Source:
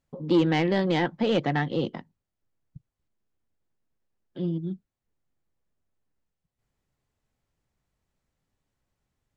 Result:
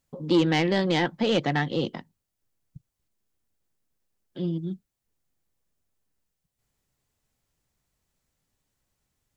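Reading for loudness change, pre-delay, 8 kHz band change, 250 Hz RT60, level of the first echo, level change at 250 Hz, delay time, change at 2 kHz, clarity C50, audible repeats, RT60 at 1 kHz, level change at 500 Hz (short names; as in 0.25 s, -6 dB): +0.5 dB, none, n/a, none, none, 0.0 dB, none, +2.0 dB, none, none, none, 0.0 dB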